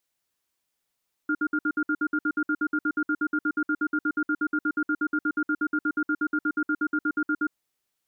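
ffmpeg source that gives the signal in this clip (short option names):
-f lavfi -i "aevalsrc='0.0596*(sin(2*PI*304*t)+sin(2*PI*1410*t))*clip(min(mod(t,0.12),0.06-mod(t,0.12))/0.005,0,1)':d=6.2:s=44100"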